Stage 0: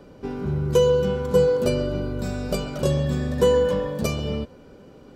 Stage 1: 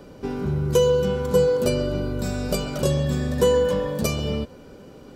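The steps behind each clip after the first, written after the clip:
in parallel at −3 dB: downward compressor, threshold −27 dBFS, peak gain reduction 13.5 dB
on the sum: high-shelf EQ 5,100 Hz +6.5 dB
level −2 dB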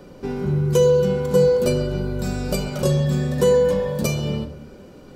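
rectangular room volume 750 cubic metres, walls furnished, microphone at 0.94 metres

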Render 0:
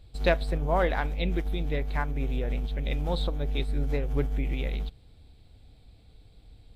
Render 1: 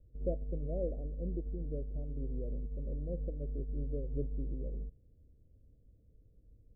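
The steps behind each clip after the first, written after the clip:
Butterworth low-pass 600 Hz 72 dB per octave
level −9 dB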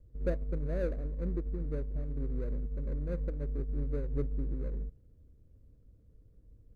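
running median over 41 samples
level +3.5 dB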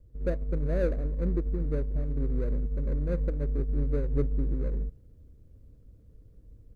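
automatic gain control gain up to 4 dB
level +2 dB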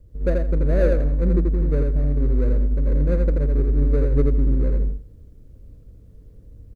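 repeating echo 83 ms, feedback 19%, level −3.5 dB
level +7 dB

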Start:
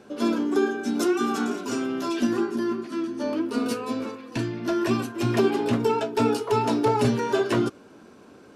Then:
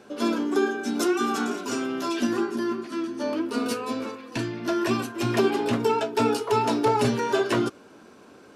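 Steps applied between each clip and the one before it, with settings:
low-shelf EQ 370 Hz −5.5 dB
level +2 dB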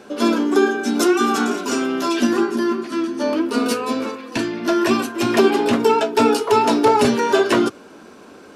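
parametric band 120 Hz −12.5 dB 0.27 octaves
level +7.5 dB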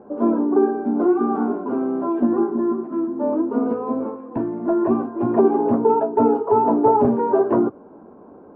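Chebyshev low-pass filter 920 Hz, order 3

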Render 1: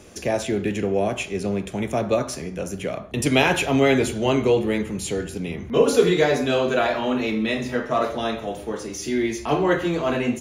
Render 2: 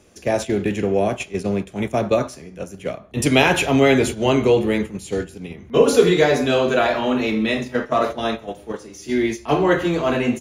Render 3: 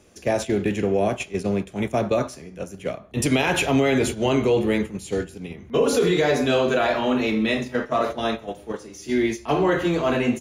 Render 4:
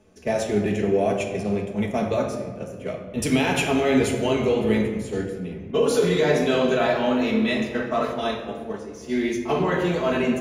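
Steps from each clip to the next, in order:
noise gate −26 dBFS, range −10 dB; level +3 dB
brickwall limiter −9.5 dBFS, peak gain reduction 8 dB; level −1.5 dB
flanger 1.7 Hz, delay 9.4 ms, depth 4 ms, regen +59%; rectangular room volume 2,100 cubic metres, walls mixed, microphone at 1.5 metres; one half of a high-frequency compander decoder only; level +1 dB

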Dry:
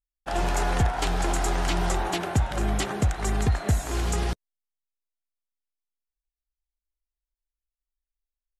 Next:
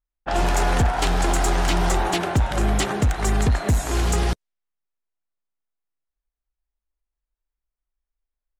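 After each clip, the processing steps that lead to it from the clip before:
low-pass that shuts in the quiet parts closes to 1,700 Hz, open at −23.5 dBFS
gain into a clipping stage and back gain 19.5 dB
level +5.5 dB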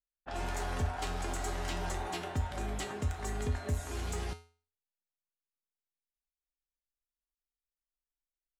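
tuned comb filter 84 Hz, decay 0.39 s, harmonics odd, mix 80%
level −5 dB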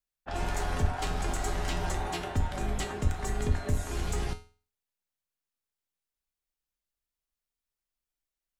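sub-octave generator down 2 octaves, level −1 dB
level +3.5 dB

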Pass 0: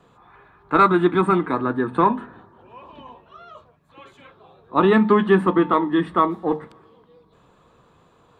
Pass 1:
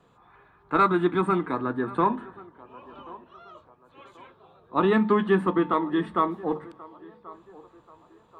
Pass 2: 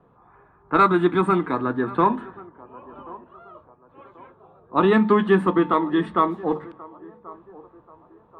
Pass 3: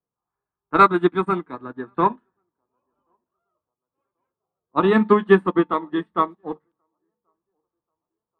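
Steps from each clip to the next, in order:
feedback echo with a band-pass in the loop 1,084 ms, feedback 48%, band-pass 710 Hz, level −19 dB; level −5.5 dB
low-pass that shuts in the quiet parts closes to 1,200 Hz, open at −21 dBFS; level +4 dB
expander for the loud parts 2.5 to 1, over −38 dBFS; level +5 dB

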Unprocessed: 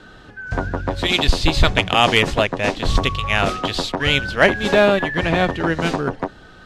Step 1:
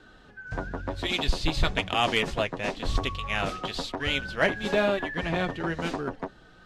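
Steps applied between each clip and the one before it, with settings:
flanger 1 Hz, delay 2.5 ms, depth 4.3 ms, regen −48%
level −6 dB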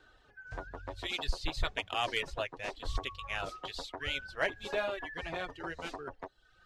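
reverb reduction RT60 0.72 s
parametric band 200 Hz −13.5 dB 1 octave
level −7 dB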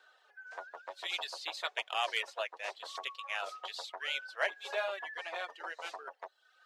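high-pass filter 550 Hz 24 dB per octave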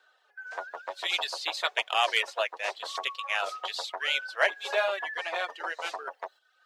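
noise gate −58 dBFS, range −9 dB
level +8 dB

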